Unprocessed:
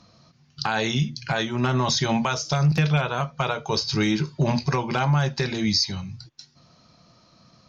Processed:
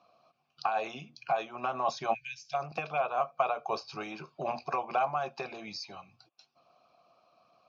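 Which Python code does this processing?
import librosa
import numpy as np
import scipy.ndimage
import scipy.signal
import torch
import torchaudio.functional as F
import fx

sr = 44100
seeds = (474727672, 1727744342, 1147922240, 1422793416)

y = fx.vowel_filter(x, sr, vowel='a')
y = fx.dynamic_eq(y, sr, hz=3300.0, q=2.2, threshold_db=-60.0, ratio=4.0, max_db=-7)
y = fx.brickwall_bandstop(y, sr, low_hz=150.0, high_hz=1500.0, at=(2.13, 2.53), fade=0.02)
y = fx.hpss(y, sr, part='percussive', gain_db=8)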